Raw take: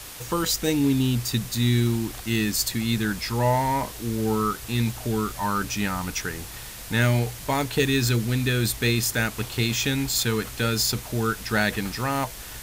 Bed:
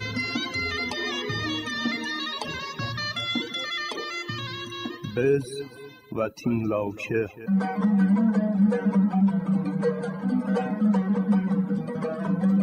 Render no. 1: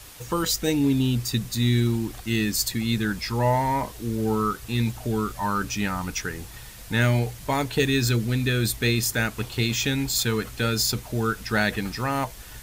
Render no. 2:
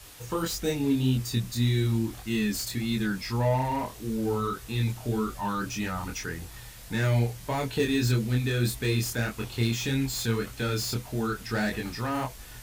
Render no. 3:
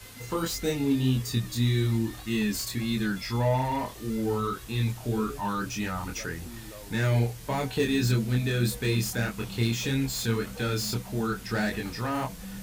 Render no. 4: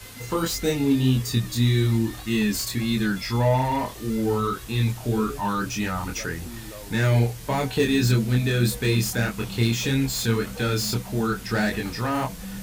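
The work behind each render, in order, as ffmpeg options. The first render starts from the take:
ffmpeg -i in.wav -af "afftdn=noise_reduction=6:noise_floor=-39" out.wav
ffmpeg -i in.wav -filter_complex "[0:a]flanger=delay=22.5:depth=3.8:speed=1.7,acrossover=split=660[link_01][link_02];[link_02]asoftclip=type=tanh:threshold=-29dB[link_03];[link_01][link_03]amix=inputs=2:normalize=0" out.wav
ffmpeg -i in.wav -i bed.wav -filter_complex "[1:a]volume=-20dB[link_01];[0:a][link_01]amix=inputs=2:normalize=0" out.wav
ffmpeg -i in.wav -af "volume=4.5dB" out.wav

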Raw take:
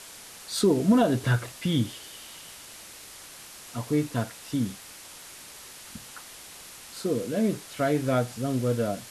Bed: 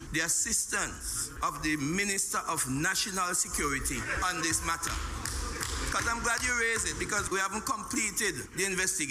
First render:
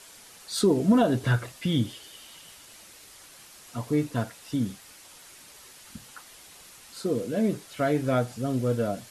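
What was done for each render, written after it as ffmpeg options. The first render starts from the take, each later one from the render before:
ffmpeg -i in.wav -af "afftdn=noise_reduction=6:noise_floor=-46" out.wav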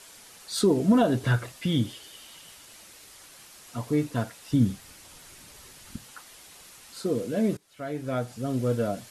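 ffmpeg -i in.wav -filter_complex "[0:a]asettb=1/sr,asplit=3[link_01][link_02][link_03];[link_01]atrim=end=4.514[link_04];[link_02]atrim=start=4.51:end=5.96,asetpts=PTS-STARTPTS,afade=type=in:duration=0.004:curve=qsin,afade=type=out:start_time=1.446:duration=0.004:curve=qsin,lowshelf=frequency=210:gain=11.5[link_05];[link_03]atrim=start=5.956[link_06];[link_04][link_05]acrossfade=duration=0.004:curve1=hsin:curve2=qsin[link_07];[link_07][link_06]acrossfade=duration=0.004:curve1=qsin:curve2=hsin,asplit=2[link_08][link_09];[link_08]atrim=end=7.57,asetpts=PTS-STARTPTS,afade=type=out:start_time=7.566:duration=0.004:curve=hsin:silence=0.0841395[link_10];[link_09]atrim=start=7.57,asetpts=PTS-STARTPTS,afade=type=in:duration=1.07:silence=0.0841395[link_11];[link_10][link_11]concat=n=2:v=0:a=1" out.wav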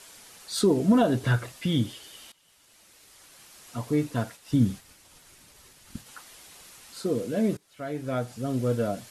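ffmpeg -i in.wav -filter_complex "[0:a]asplit=3[link_01][link_02][link_03];[link_01]afade=type=out:start_time=4.35:duration=0.02[link_04];[link_02]agate=range=-33dB:threshold=-45dB:ratio=3:release=100:detection=peak,afade=type=in:start_time=4.35:duration=0.02,afade=type=out:start_time=6.05:duration=0.02[link_05];[link_03]afade=type=in:start_time=6.05:duration=0.02[link_06];[link_04][link_05][link_06]amix=inputs=3:normalize=0,asplit=2[link_07][link_08];[link_07]atrim=end=2.32,asetpts=PTS-STARTPTS,afade=type=out:start_time=2.316:duration=0.004:curve=hsin:silence=0.105925[link_09];[link_08]atrim=start=2.32,asetpts=PTS-STARTPTS,afade=type=in:duration=1.45:silence=0.105925[link_10];[link_09][link_10]concat=n=2:v=0:a=1" out.wav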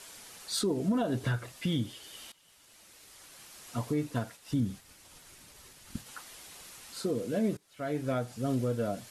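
ffmpeg -i in.wav -af "alimiter=limit=-21dB:level=0:latency=1:release=404" out.wav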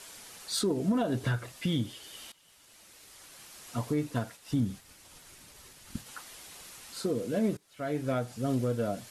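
ffmpeg -i in.wav -filter_complex "[0:a]aeval=exprs='0.0944*(cos(1*acos(clip(val(0)/0.0944,-1,1)))-cos(1*PI/2))+0.00841*(cos(3*acos(clip(val(0)/0.0944,-1,1)))-cos(3*PI/2))':channel_layout=same,asplit=2[link_01][link_02];[link_02]asoftclip=type=tanh:threshold=-32dB,volume=-5.5dB[link_03];[link_01][link_03]amix=inputs=2:normalize=0" out.wav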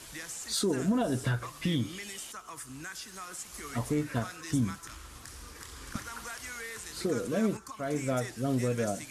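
ffmpeg -i in.wav -i bed.wav -filter_complex "[1:a]volume=-13dB[link_01];[0:a][link_01]amix=inputs=2:normalize=0" out.wav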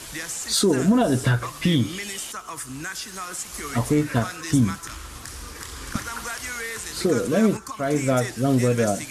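ffmpeg -i in.wav -af "volume=9.5dB" out.wav

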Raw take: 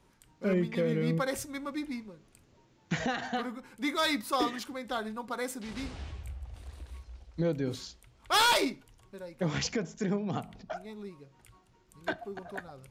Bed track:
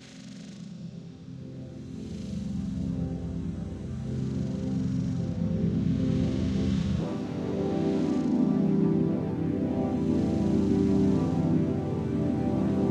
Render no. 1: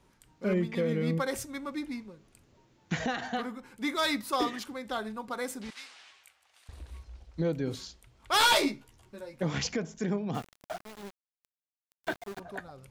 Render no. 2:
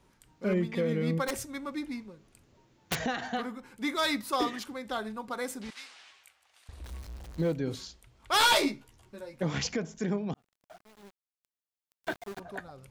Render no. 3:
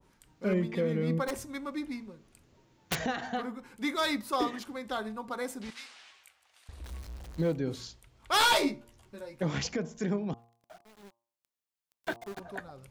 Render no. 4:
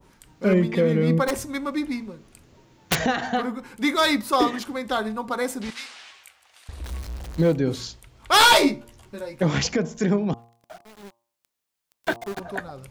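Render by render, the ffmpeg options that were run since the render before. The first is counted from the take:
ffmpeg -i in.wav -filter_complex "[0:a]asettb=1/sr,asplit=3[link_01][link_02][link_03];[link_01]atrim=end=5.704[link_04];[link_02]atrim=start=5.7:end=6.69,asetpts=PTS-STARTPTS,afade=type=in:duration=0.004:curve=qsin,afade=type=out:start_time=0.986:duration=0.004:curve=qsin,highpass=1400[link_05];[link_03]atrim=start=6.686[link_06];[link_04][link_05]acrossfade=duration=0.004:curve1=hsin:curve2=qsin[link_07];[link_07][link_06]acrossfade=duration=0.004:curve1=qsin:curve2=hsin,asettb=1/sr,asplit=3[link_08][link_09][link_10];[link_08]atrim=end=8.394[link_11];[link_09]atrim=start=8.39:end=9.43,asetpts=PTS-STARTPTS,afade=type=in:duration=0.004:curve=qsin,afade=type=out:start_time=1.036:duration=0.004:curve=qsin,asplit=2[link_12][link_13];[link_13]adelay=14,volume=-3dB[link_14];[link_12][link_14]amix=inputs=2:normalize=0,atrim=end_sample=45864[link_15];[link_10]atrim=start=9.426[link_16];[link_11][link_15]acrossfade=duration=0.004:curve1=hsin:curve2=qsin[link_17];[link_17][link_16]acrossfade=duration=0.004:curve1=qsin:curve2=hsin,asettb=1/sr,asplit=3[link_18][link_19][link_20];[link_18]atrim=end=10.344[link_21];[link_19]atrim=start=10.34:end=12.4,asetpts=PTS-STARTPTS,afade=type=in:duration=0.004:curve=qsin,afade=type=out:start_time=2.056:duration=0.004:curve=qsin,aeval=exprs='val(0)*gte(abs(val(0)),0.00944)':channel_layout=same[link_22];[link_20]atrim=start=12.396[link_23];[link_21][link_22]acrossfade=duration=0.004:curve1=hsin:curve2=qsin[link_24];[link_24][link_23]acrossfade=duration=0.004:curve1=qsin:curve2=hsin" out.wav
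ffmpeg -i in.wav -filter_complex "[0:a]asplit=3[link_01][link_02][link_03];[link_01]afade=type=out:start_time=1.27:duration=0.02[link_04];[link_02]aeval=exprs='(mod(15*val(0)+1,2)-1)/15':channel_layout=same,afade=type=in:start_time=1.27:duration=0.02,afade=type=out:start_time=2.98:duration=0.02[link_05];[link_03]afade=type=in:start_time=2.98:duration=0.02[link_06];[link_04][link_05][link_06]amix=inputs=3:normalize=0,asettb=1/sr,asplit=3[link_07][link_08][link_09];[link_07]atrim=end=6.844[link_10];[link_08]atrim=start=6.84:end=7.53,asetpts=PTS-STARTPTS,afade=type=in:duration=0.004:curve=qsin,afade=type=out:start_time=0.686:duration=0.004:curve=qsin,aeval=exprs='val(0)+0.5*0.0075*sgn(val(0))':channel_layout=same[link_11];[link_09]atrim=start=7.526[link_12];[link_10][link_11]acrossfade=duration=0.004:curve1=hsin:curve2=qsin[link_13];[link_13][link_12]acrossfade=duration=0.004:curve1=qsin:curve2=hsin,asplit=2[link_14][link_15];[link_14]atrim=end=10.34,asetpts=PTS-STARTPTS,afade=type=out:start_time=10.336:duration=0.004:curve=hsin[link_16];[link_15]atrim=start=10.34,asetpts=PTS-STARTPTS,afade=type=in:duration=1.94[link_17];[link_16][link_17]concat=n=2:v=0:a=1" out.wav
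ffmpeg -i in.wav -af "bandreject=frequency=116.6:width_type=h:width=4,bandreject=frequency=233.2:width_type=h:width=4,bandreject=frequency=349.8:width_type=h:width=4,bandreject=frequency=466.4:width_type=h:width=4,bandreject=frequency=583:width_type=h:width=4,bandreject=frequency=699.6:width_type=h:width=4,bandreject=frequency=816.2:width_type=h:width=4,bandreject=frequency=932.8:width_type=h:width=4,bandreject=frequency=1049.4:width_type=h:width=4,bandreject=frequency=1166:width_type=h:width=4,adynamicequalizer=threshold=0.00631:dfrequency=1500:dqfactor=0.7:tfrequency=1500:tqfactor=0.7:attack=5:release=100:ratio=0.375:range=3:mode=cutabove:tftype=highshelf" out.wav
ffmpeg -i in.wav -af "volume=9.5dB" out.wav

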